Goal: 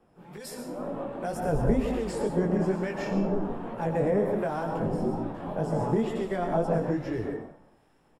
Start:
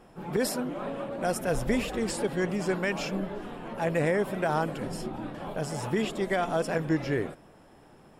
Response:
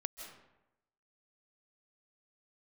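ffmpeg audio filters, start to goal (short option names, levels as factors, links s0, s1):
-filter_complex "[0:a]flanger=delay=17:depth=6:speed=2.1[s0];[1:a]atrim=start_sample=2205,afade=t=out:st=0.38:d=0.01,atrim=end_sample=17199,asetrate=61740,aresample=44100[s1];[s0][s1]afir=irnorm=-1:irlink=0,acrossover=split=140|3000[s2][s3][s4];[s3]acompressor=threshold=0.0158:ratio=6[s5];[s2][s5][s4]amix=inputs=3:normalize=0,acrossover=split=1400[s6][s7];[s6]aeval=exprs='val(0)*(1-0.5/2+0.5/2*cos(2*PI*1.2*n/s))':c=same[s8];[s7]aeval=exprs='val(0)*(1-0.5/2-0.5/2*cos(2*PI*1.2*n/s))':c=same[s9];[s8][s9]amix=inputs=2:normalize=0,acrossover=split=1200[s10][s11];[s10]dynaudnorm=f=150:g=13:m=5.62[s12];[s11]aecho=1:1:90|180|270|360|450:0.224|0.11|0.0538|0.0263|0.0129[s13];[s12][s13]amix=inputs=2:normalize=0"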